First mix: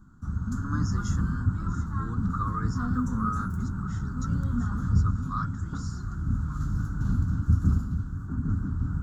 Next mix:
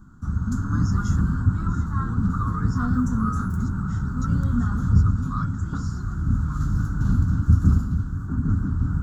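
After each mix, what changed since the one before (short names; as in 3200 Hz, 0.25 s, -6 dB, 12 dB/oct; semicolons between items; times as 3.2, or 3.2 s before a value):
background +5.5 dB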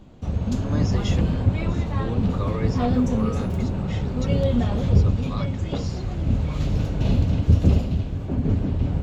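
master: remove EQ curve 190 Hz 0 dB, 280 Hz -3 dB, 590 Hz -27 dB, 1400 Hz +13 dB, 2300 Hz -29 dB, 7200 Hz +2 dB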